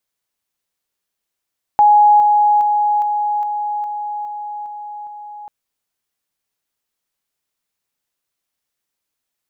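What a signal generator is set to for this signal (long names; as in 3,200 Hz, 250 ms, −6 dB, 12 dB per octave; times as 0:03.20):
level staircase 834 Hz −6.5 dBFS, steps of −3 dB, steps 9, 0.41 s 0.00 s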